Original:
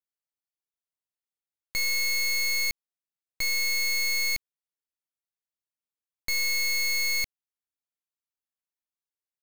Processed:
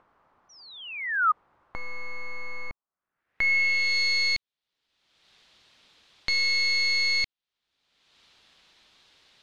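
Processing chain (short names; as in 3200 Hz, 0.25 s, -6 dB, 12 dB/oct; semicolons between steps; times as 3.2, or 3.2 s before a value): upward compressor, threshold -31 dBFS; painted sound fall, 0.49–1.32, 1200–6000 Hz -24 dBFS; low-pass sweep 1100 Hz -> 3800 Hz, 2.85–3.98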